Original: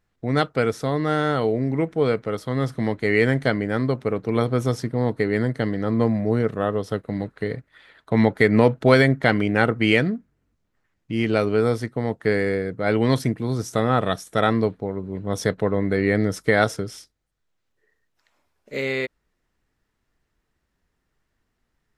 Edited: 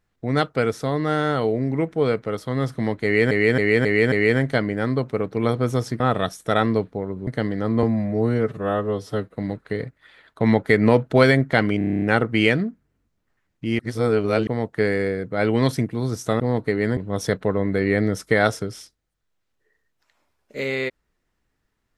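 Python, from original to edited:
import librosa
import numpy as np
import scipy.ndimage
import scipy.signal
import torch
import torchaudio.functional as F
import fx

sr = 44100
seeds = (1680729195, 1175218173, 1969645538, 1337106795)

y = fx.edit(x, sr, fx.repeat(start_s=3.04, length_s=0.27, count=5),
    fx.swap(start_s=4.92, length_s=0.57, other_s=13.87, other_length_s=1.27),
    fx.stretch_span(start_s=6.05, length_s=1.02, factor=1.5),
    fx.stutter(start_s=9.49, slice_s=0.03, count=9),
    fx.reverse_span(start_s=11.26, length_s=0.68), tone=tone)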